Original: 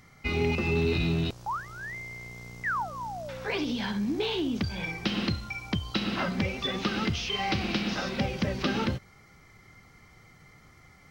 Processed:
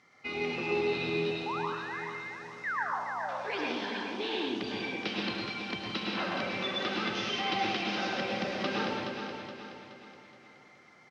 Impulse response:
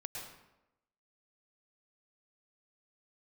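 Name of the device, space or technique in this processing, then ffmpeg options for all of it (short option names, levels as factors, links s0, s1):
supermarket ceiling speaker: -filter_complex "[0:a]asettb=1/sr,asplit=3[s0][s1][s2];[s0]atrim=end=3.894[s3];[s1]atrim=start=3.89:end=4.33,asetpts=PTS-STARTPTS,afade=t=in:d=0.004:c=qsin,afade=t=out:st=0.436:d=0.004:c=qsin,highpass=370[s4];[s2]atrim=start=4.326[s5];[s3][s4]acrossfade=d=0.004:c1=hsin:c2=qsin[s6];[s6][s5]acrossfade=d=0.004:c1=qsin:c2=hsin,highpass=300,lowpass=5500[s7];[1:a]atrim=start_sample=2205[s8];[s7][s8]afir=irnorm=-1:irlink=0,aecho=1:1:422|844|1266|1688|2110:0.447|0.201|0.0905|0.0407|0.0183"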